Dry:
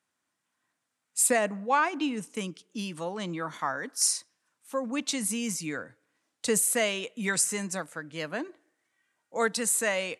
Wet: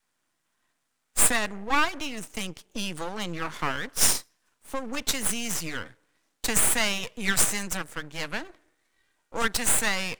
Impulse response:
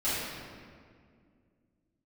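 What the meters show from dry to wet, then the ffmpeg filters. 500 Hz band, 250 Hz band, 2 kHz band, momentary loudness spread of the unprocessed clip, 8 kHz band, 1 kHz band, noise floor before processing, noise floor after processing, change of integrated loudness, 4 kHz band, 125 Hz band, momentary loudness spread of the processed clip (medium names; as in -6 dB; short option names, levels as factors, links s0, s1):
-4.5 dB, -1.5 dB, +3.5 dB, 13 LU, +2.5 dB, +0.5 dB, -82 dBFS, -77 dBFS, +2.5 dB, +5.5 dB, +2.5 dB, 14 LU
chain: -filter_complex "[0:a]acrossover=split=160|980[s0][s1][s2];[s1]acompressor=threshold=0.0126:ratio=6[s3];[s0][s3][s2]amix=inputs=3:normalize=0,adynamicequalizer=threshold=0.00282:dfrequency=300:dqfactor=0.87:tfrequency=300:tqfactor=0.87:attack=5:release=100:ratio=0.375:range=2:mode=cutabove:tftype=bell,aeval=exprs='max(val(0),0)':c=same,volume=2.66"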